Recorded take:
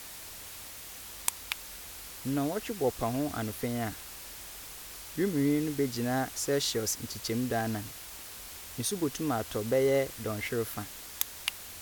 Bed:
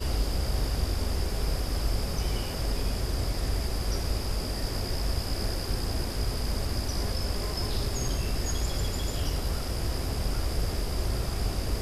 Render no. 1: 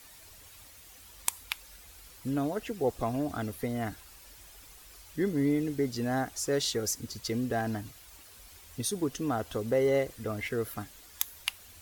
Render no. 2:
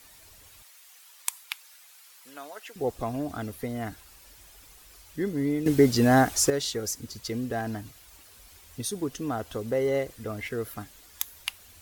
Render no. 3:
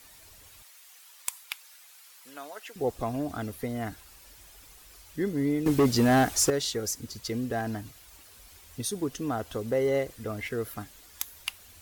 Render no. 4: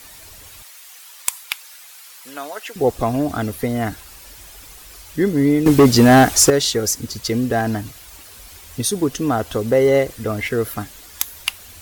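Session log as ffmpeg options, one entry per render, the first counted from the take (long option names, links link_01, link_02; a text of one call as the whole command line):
ffmpeg -i in.wav -af "afftdn=noise_reduction=10:noise_floor=-45" out.wav
ffmpeg -i in.wav -filter_complex "[0:a]asettb=1/sr,asplit=3[link_01][link_02][link_03];[link_01]atrim=end=0.624[link_04];[link_02]atrim=start=0.62:end=2.76,asetpts=PTS-STARTPTS,afade=type=in:duration=0.004:curve=qsin,afade=type=out:start_time=2.136:duration=0.004:curve=qsin,highpass=930[link_05];[link_03]atrim=start=2.756[link_06];[link_04][link_05]acrossfade=duration=0.004:curve1=hsin:curve2=qsin[link_07];[link_07][link_06]acrossfade=duration=0.004:curve1=qsin:curve2=hsin,asplit=3[link_08][link_09][link_10];[link_08]atrim=end=5.662[link_11];[link_09]atrim=start=5.658:end=6.502,asetpts=PTS-STARTPTS,volume=11dB[link_12];[link_10]atrim=start=6.498[link_13];[link_11][link_12]acrossfade=duration=0.004:curve1=hsin:curve2=hsin[link_14];[link_14][link_13]acrossfade=duration=0.004:curve1=hsin:curve2=hsin" out.wav
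ffmpeg -i in.wav -af "volume=17dB,asoftclip=hard,volume=-17dB" out.wav
ffmpeg -i in.wav -af "volume=11.5dB" out.wav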